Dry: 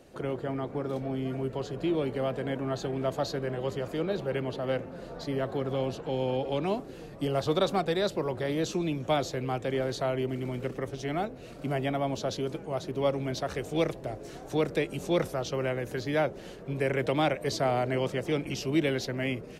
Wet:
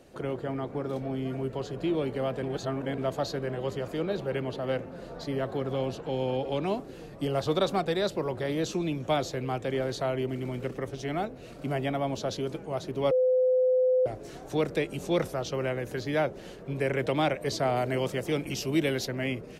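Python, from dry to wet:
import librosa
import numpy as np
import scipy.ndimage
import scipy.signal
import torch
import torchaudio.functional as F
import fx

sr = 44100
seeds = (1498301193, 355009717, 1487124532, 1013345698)

y = fx.high_shelf(x, sr, hz=8600.0, db=11.0, at=(17.76, 19.08))
y = fx.edit(y, sr, fx.reverse_span(start_s=2.43, length_s=0.55),
    fx.bleep(start_s=13.11, length_s=0.95, hz=510.0, db=-20.0), tone=tone)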